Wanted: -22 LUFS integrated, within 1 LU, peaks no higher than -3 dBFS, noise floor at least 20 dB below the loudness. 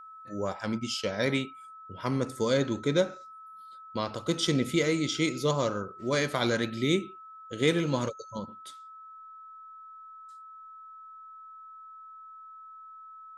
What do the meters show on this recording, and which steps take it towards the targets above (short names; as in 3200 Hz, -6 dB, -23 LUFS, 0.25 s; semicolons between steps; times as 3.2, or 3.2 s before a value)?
steady tone 1300 Hz; tone level -45 dBFS; loudness -29.5 LUFS; peak -11.5 dBFS; loudness target -22.0 LUFS
-> notch 1300 Hz, Q 30; gain +7.5 dB